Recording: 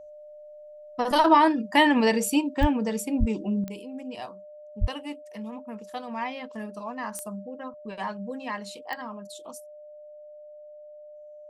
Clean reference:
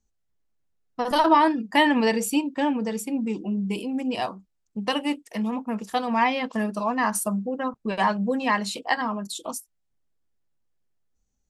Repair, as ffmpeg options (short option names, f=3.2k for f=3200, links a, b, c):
-filter_complex "[0:a]adeclick=t=4,bandreject=f=600:w=30,asplit=3[a][b][c];[a]afade=t=out:st=2.6:d=0.02[d];[b]highpass=f=140:w=0.5412,highpass=f=140:w=1.3066,afade=t=in:st=2.6:d=0.02,afade=t=out:st=2.72:d=0.02[e];[c]afade=t=in:st=2.72:d=0.02[f];[d][e][f]amix=inputs=3:normalize=0,asplit=3[g][h][i];[g]afade=t=out:st=3.19:d=0.02[j];[h]highpass=f=140:w=0.5412,highpass=f=140:w=1.3066,afade=t=in:st=3.19:d=0.02,afade=t=out:st=3.31:d=0.02[k];[i]afade=t=in:st=3.31:d=0.02[l];[j][k][l]amix=inputs=3:normalize=0,asplit=3[m][n][o];[m]afade=t=out:st=4.8:d=0.02[p];[n]highpass=f=140:w=0.5412,highpass=f=140:w=1.3066,afade=t=in:st=4.8:d=0.02,afade=t=out:st=4.92:d=0.02[q];[o]afade=t=in:st=4.92:d=0.02[r];[p][q][r]amix=inputs=3:normalize=0,asetnsamples=n=441:p=0,asendcmd='3.64 volume volume 10.5dB',volume=0dB"